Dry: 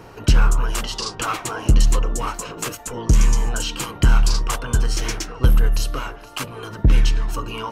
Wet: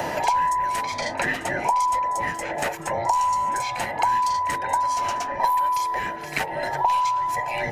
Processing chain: every band turned upside down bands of 1 kHz; reverse echo 43 ms -18.5 dB; three bands compressed up and down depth 100%; trim -8 dB

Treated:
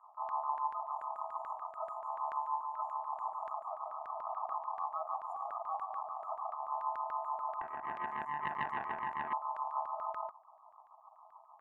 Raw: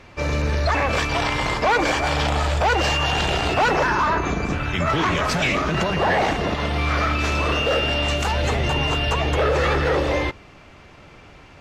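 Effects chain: FFT band-reject 340–7800 Hz; in parallel at -2.5 dB: compression, threshold -38 dBFS, peak gain reduction 17 dB; on the sum: ring modulator 960 Hz; LFO band-pass saw down 6.9 Hz 500–1700 Hz; 7.61–9.33 s: loudspeaker Doppler distortion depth 0.41 ms; trim -8 dB

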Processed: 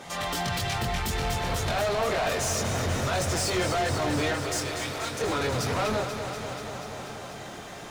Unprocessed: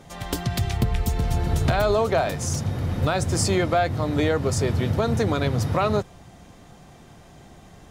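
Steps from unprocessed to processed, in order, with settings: peak limiter -17.5 dBFS, peak gain reduction 7.5 dB; chorus voices 4, 0.58 Hz, delay 23 ms, depth 1.2 ms; overdrive pedal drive 25 dB, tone 7.4 kHz, clips at -15.5 dBFS; 4.34–5.21 s: high-pass 1.4 kHz 6 dB/octave; bit-crushed delay 242 ms, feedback 80%, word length 9-bit, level -8.5 dB; trim -5 dB

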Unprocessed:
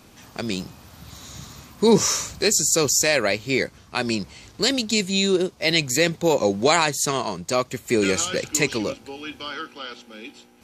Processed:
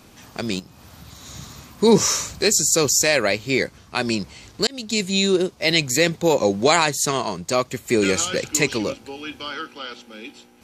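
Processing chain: 0.59–1.26 s: compression 12:1, threshold -39 dBFS, peak gain reduction 11.5 dB; 4.67–5.20 s: fade in equal-power; trim +1.5 dB

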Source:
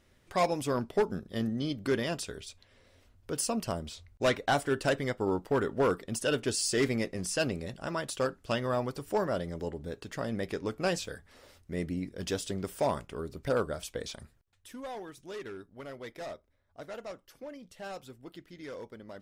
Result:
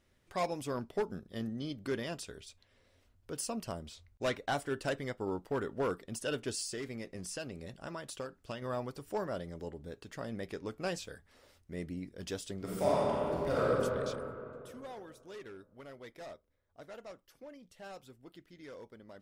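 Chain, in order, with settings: 6.62–8.62 s: compression, threshold -31 dBFS, peak gain reduction 8 dB; 12.57–13.64 s: reverb throw, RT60 2.8 s, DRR -7.5 dB; trim -6.5 dB

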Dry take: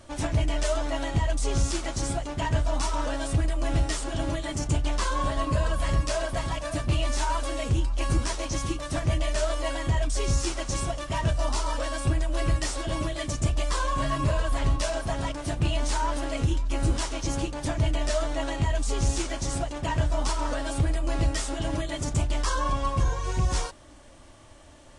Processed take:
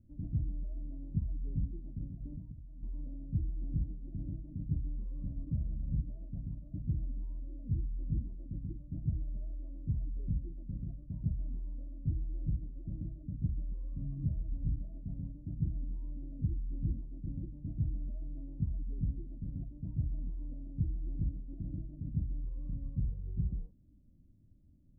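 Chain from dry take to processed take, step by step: 2.07–2.83 s: compressor with a negative ratio -34 dBFS, ratio -1; four-pole ladder low-pass 230 Hz, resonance 45%; trim -1.5 dB

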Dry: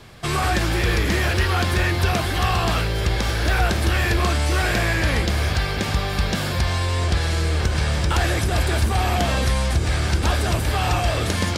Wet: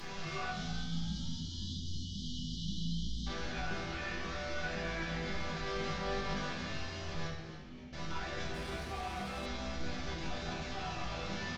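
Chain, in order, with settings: one-bit delta coder 32 kbps, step -25 dBFS; 0.50–3.27 s: spectral selection erased 270–2900 Hz; peak limiter -18.5 dBFS, peak gain reduction 8.5 dB; 7.27–7.93 s: cascade formant filter i; chord resonator E3 minor, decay 0.43 s; frequency-shifting echo 281 ms, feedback 44%, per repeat +58 Hz, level -12 dB; simulated room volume 620 m³, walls mixed, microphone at 1.1 m; 8.54–9.46 s: sliding maximum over 3 samples; trim +4.5 dB

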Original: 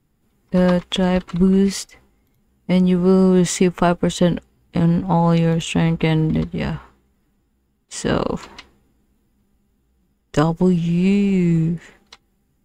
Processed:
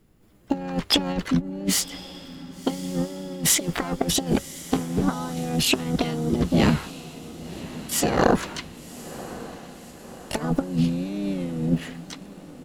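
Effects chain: harmony voices -3 st -15 dB, +7 st -1 dB; compressor with a negative ratio -19 dBFS, ratio -0.5; echo that smears into a reverb 1099 ms, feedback 57%, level -15.5 dB; trim -3.5 dB

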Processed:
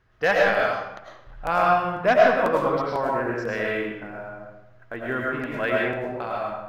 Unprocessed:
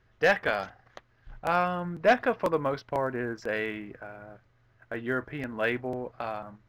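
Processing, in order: peaking EQ 1.1 kHz +3.5 dB 0.89 oct; reverberation RT60 0.85 s, pre-delay 65 ms, DRR -3 dB

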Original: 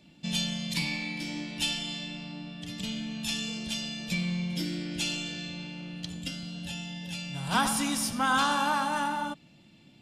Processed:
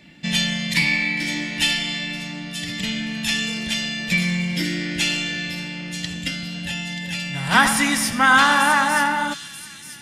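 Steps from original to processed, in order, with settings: peaking EQ 1.9 kHz +14.5 dB 0.54 oct; feedback echo behind a high-pass 933 ms, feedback 37%, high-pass 4.4 kHz, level -7 dB; trim +7.5 dB

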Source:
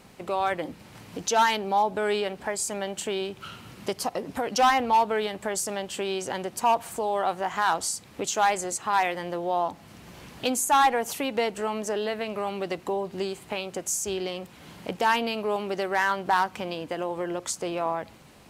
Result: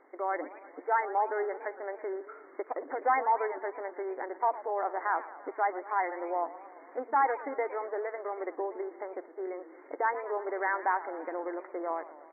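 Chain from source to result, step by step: brick-wall FIR band-pass 270–2200 Hz; tempo 1.5×; modulated delay 114 ms, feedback 68%, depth 208 cents, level -16 dB; trim -5 dB

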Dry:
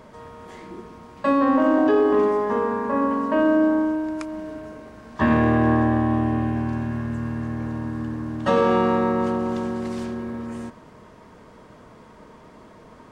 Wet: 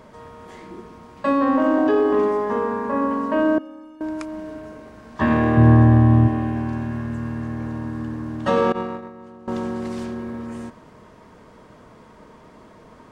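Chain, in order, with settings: 3.58–4.01 s: inharmonic resonator 260 Hz, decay 0.27 s, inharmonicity 0.03; 5.57–6.28 s: peaking EQ 120 Hz +13 dB 1.4 oct; 8.72–9.48 s: gate -17 dBFS, range -19 dB

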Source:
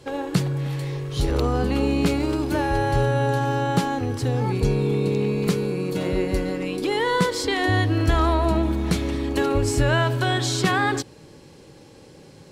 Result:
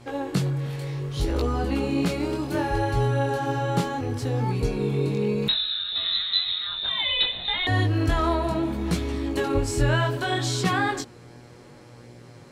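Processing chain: mains buzz 120 Hz, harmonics 20, -47 dBFS -5 dB/octave; chorus 0.66 Hz, delay 17 ms, depth 6.8 ms; 5.48–7.67 s: frequency inversion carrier 4 kHz

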